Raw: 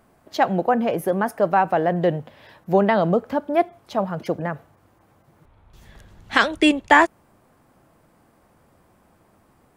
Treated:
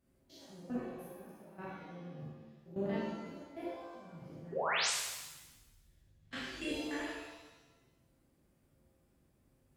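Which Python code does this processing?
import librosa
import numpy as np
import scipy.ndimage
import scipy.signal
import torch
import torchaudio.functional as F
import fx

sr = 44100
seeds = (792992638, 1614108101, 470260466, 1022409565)

y = fx.spec_steps(x, sr, hold_ms=100)
y = fx.peak_eq(y, sr, hz=120.0, db=-8.0, octaves=1.6)
y = fx.level_steps(y, sr, step_db=21)
y = scipy.signal.sosfilt(scipy.signal.butter(2, 46.0, 'highpass', fs=sr, output='sos'), y)
y = fx.tone_stack(y, sr, knobs='10-0-1')
y = fx.spec_paint(y, sr, seeds[0], shape='rise', start_s=4.52, length_s=0.38, low_hz=370.0, high_hz=9500.0, level_db=-44.0)
y = fx.rev_shimmer(y, sr, seeds[1], rt60_s=1.1, semitones=7, shimmer_db=-8, drr_db=-7.5)
y = y * 10.0 ** (3.0 / 20.0)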